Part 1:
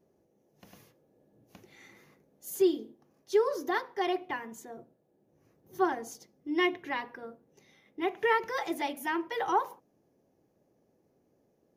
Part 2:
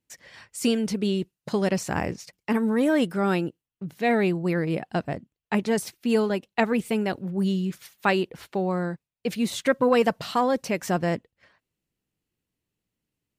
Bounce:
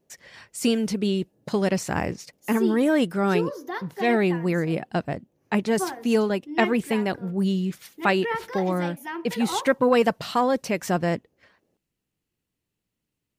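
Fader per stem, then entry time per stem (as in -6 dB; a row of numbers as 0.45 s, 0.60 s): -2.0 dB, +1.0 dB; 0.00 s, 0.00 s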